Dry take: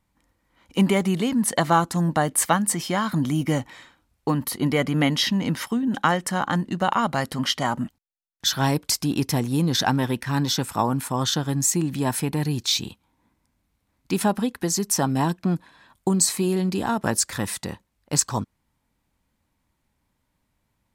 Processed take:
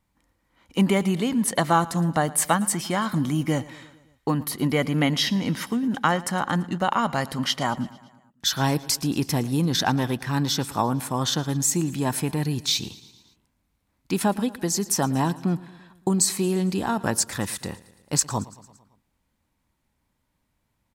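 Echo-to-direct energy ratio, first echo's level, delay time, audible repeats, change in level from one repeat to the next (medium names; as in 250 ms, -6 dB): -18.0 dB, -20.0 dB, 113 ms, 4, -4.5 dB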